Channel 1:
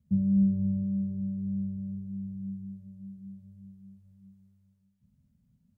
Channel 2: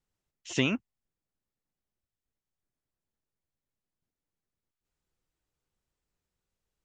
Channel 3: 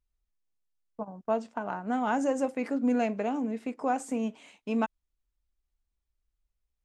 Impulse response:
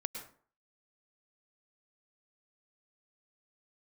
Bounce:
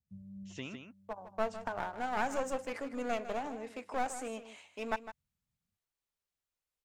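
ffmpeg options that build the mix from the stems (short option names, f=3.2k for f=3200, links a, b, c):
-filter_complex "[0:a]equalizer=f=280:t=o:w=2:g=-10,volume=-17dB[a];[1:a]volume=-16.5dB,asplit=3[b][c][d];[c]volume=-7.5dB[e];[2:a]highpass=530,aeval=exprs='clip(val(0),-1,0.0126)':c=same,adelay=100,volume=-0.5dB,asplit=2[f][g];[g]volume=-12.5dB[h];[d]apad=whole_len=254491[i];[a][i]sidechaincompress=threshold=-52dB:ratio=8:attack=16:release=859[j];[e][h]amix=inputs=2:normalize=0,aecho=0:1:155:1[k];[j][b][f][k]amix=inputs=4:normalize=0"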